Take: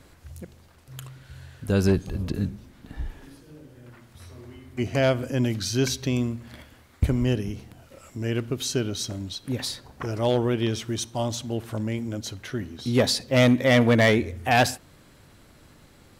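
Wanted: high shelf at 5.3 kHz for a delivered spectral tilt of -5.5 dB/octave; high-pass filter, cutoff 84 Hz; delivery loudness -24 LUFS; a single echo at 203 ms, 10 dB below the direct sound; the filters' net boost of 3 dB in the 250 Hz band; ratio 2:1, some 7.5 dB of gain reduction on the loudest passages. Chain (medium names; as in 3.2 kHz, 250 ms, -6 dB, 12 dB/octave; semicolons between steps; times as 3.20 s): high-pass 84 Hz; peaking EQ 250 Hz +3.5 dB; treble shelf 5.3 kHz -7 dB; compression 2:1, threshold -26 dBFS; delay 203 ms -10 dB; trim +5 dB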